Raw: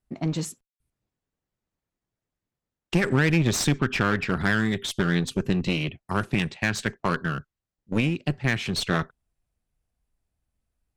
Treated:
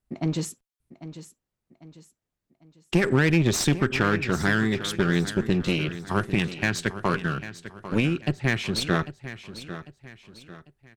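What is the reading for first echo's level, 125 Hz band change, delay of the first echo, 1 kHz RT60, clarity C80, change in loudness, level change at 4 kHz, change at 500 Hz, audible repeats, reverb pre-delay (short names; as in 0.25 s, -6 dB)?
-13.5 dB, +0.5 dB, 0.797 s, none, none, +0.5 dB, 0.0 dB, +2.5 dB, 3, none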